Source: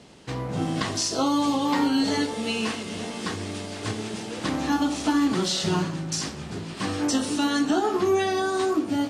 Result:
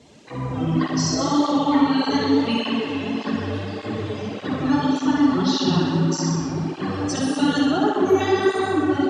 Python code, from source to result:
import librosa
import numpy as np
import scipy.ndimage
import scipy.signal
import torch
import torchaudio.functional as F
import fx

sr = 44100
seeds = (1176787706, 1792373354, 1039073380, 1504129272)

p1 = fx.spec_topn(x, sr, count=64)
p2 = fx.dmg_noise_band(p1, sr, seeds[0], low_hz=1400.0, high_hz=7600.0, level_db=-61.0)
p3 = p2 + fx.room_flutter(p2, sr, wall_m=10.6, rt60_s=0.81, dry=0)
p4 = fx.rev_freeverb(p3, sr, rt60_s=4.6, hf_ratio=0.4, predelay_ms=20, drr_db=0.5)
p5 = fx.flanger_cancel(p4, sr, hz=1.7, depth_ms=5.9)
y = p5 * 10.0 ** (2.5 / 20.0)